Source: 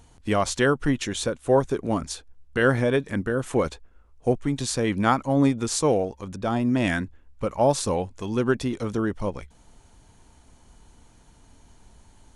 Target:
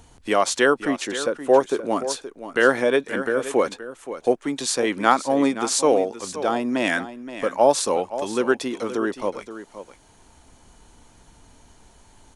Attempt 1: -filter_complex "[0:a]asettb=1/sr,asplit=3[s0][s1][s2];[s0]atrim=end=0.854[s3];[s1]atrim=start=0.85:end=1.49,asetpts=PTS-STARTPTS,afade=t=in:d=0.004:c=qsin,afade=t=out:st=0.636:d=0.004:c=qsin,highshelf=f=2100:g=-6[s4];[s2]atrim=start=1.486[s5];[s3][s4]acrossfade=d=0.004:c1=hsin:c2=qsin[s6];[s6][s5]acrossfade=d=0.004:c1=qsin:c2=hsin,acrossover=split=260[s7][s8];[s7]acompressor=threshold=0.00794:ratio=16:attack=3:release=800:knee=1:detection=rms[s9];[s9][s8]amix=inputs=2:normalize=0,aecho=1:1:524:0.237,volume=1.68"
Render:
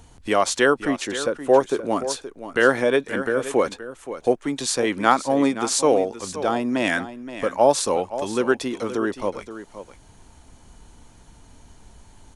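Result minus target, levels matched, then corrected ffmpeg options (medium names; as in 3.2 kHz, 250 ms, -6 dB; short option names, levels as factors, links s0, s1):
compression: peak gain reduction -8.5 dB
-filter_complex "[0:a]asettb=1/sr,asplit=3[s0][s1][s2];[s0]atrim=end=0.854[s3];[s1]atrim=start=0.85:end=1.49,asetpts=PTS-STARTPTS,afade=t=in:d=0.004:c=qsin,afade=t=out:st=0.636:d=0.004:c=qsin,highshelf=f=2100:g=-6[s4];[s2]atrim=start=1.486[s5];[s3][s4]acrossfade=d=0.004:c1=hsin:c2=qsin[s6];[s6][s5]acrossfade=d=0.004:c1=qsin:c2=hsin,acrossover=split=260[s7][s8];[s7]acompressor=threshold=0.00282:ratio=16:attack=3:release=800:knee=1:detection=rms[s9];[s9][s8]amix=inputs=2:normalize=0,aecho=1:1:524:0.237,volume=1.68"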